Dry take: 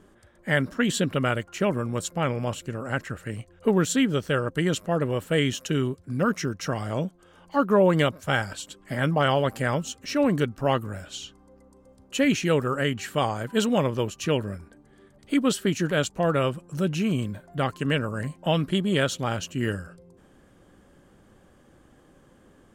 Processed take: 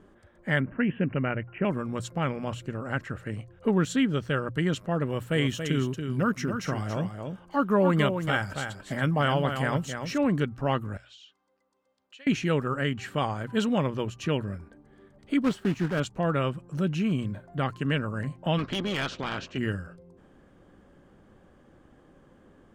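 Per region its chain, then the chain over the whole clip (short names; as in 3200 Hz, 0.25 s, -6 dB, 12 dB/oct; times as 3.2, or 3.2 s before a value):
0.6–1.65 steep low-pass 2800 Hz 96 dB/oct + bell 1200 Hz -6 dB 0.51 oct
5.07–10.18 high shelf 10000 Hz +11.5 dB + echo 0.28 s -7.5 dB
10.97–12.27 band-pass 3600 Hz, Q 1.2 + compressor, threshold -43 dBFS
15.44–16.02 block floating point 3-bit + high shelf 2100 Hz -9 dB + Doppler distortion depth 0.11 ms
18.57–19.57 spectral limiter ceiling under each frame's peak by 18 dB + LPF 5900 Hz 24 dB/oct + overloaded stage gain 21.5 dB
whole clip: LPF 2400 Hz 6 dB/oct; notches 60/120 Hz; dynamic EQ 520 Hz, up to -5 dB, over -35 dBFS, Q 0.88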